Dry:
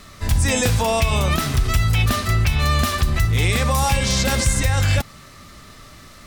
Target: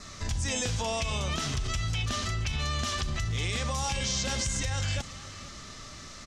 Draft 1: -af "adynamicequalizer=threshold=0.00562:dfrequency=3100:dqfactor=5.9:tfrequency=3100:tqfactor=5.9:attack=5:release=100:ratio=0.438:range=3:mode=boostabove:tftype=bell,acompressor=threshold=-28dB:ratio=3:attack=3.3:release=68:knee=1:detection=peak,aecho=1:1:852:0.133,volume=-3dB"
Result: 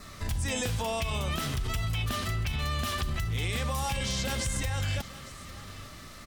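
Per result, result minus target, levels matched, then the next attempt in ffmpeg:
echo 0.377 s late; 8000 Hz band -3.5 dB
-af "adynamicequalizer=threshold=0.00562:dfrequency=3100:dqfactor=5.9:tfrequency=3100:tqfactor=5.9:attack=5:release=100:ratio=0.438:range=3:mode=boostabove:tftype=bell,acompressor=threshold=-28dB:ratio=3:attack=3.3:release=68:knee=1:detection=peak,aecho=1:1:475:0.133,volume=-3dB"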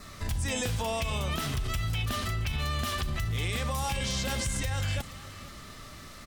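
8000 Hz band -3.5 dB
-af "adynamicequalizer=threshold=0.00562:dfrequency=3100:dqfactor=5.9:tfrequency=3100:tqfactor=5.9:attack=5:release=100:ratio=0.438:range=3:mode=boostabove:tftype=bell,lowpass=f=6.4k:t=q:w=2.5,acompressor=threshold=-28dB:ratio=3:attack=3.3:release=68:knee=1:detection=peak,aecho=1:1:475:0.133,volume=-3dB"

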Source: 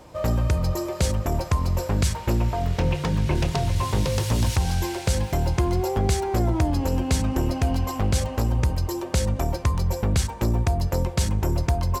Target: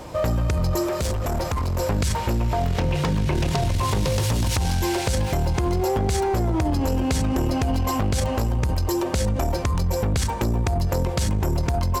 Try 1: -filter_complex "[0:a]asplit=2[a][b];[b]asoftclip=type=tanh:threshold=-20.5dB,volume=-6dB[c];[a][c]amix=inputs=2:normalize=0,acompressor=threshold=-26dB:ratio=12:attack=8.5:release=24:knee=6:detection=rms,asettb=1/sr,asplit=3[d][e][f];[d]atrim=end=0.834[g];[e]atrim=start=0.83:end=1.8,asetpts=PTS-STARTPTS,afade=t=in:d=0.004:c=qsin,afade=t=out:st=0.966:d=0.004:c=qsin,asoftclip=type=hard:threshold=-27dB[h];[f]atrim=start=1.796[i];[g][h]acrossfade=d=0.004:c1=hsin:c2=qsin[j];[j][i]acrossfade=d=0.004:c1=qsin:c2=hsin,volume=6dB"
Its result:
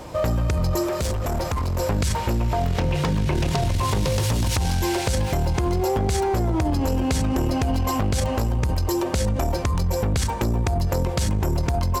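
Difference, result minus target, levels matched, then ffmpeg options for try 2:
soft clip: distortion -6 dB
-filter_complex "[0:a]asplit=2[a][b];[b]asoftclip=type=tanh:threshold=-28.5dB,volume=-6dB[c];[a][c]amix=inputs=2:normalize=0,acompressor=threshold=-26dB:ratio=12:attack=8.5:release=24:knee=6:detection=rms,asettb=1/sr,asplit=3[d][e][f];[d]atrim=end=0.834[g];[e]atrim=start=0.83:end=1.8,asetpts=PTS-STARTPTS,afade=t=in:d=0.004:c=qsin,afade=t=out:st=0.966:d=0.004:c=qsin,asoftclip=type=hard:threshold=-27dB[h];[f]atrim=start=1.796[i];[g][h]acrossfade=d=0.004:c1=hsin:c2=qsin[j];[j][i]acrossfade=d=0.004:c1=qsin:c2=hsin,volume=6dB"

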